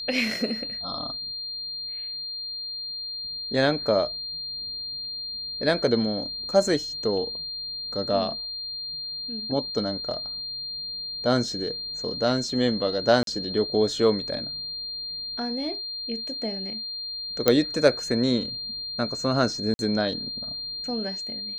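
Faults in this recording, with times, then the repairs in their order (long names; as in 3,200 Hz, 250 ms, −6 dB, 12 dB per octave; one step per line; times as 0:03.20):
whistle 4,200 Hz −31 dBFS
0:13.23–0:13.27: drop-out 42 ms
0:17.48: click −4 dBFS
0:19.74–0:19.79: drop-out 51 ms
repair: click removal
notch filter 4,200 Hz, Q 30
repair the gap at 0:13.23, 42 ms
repair the gap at 0:19.74, 51 ms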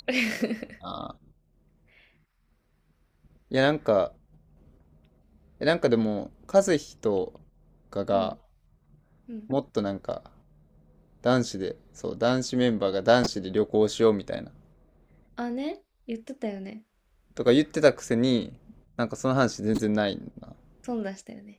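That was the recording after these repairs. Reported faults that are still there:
none of them is left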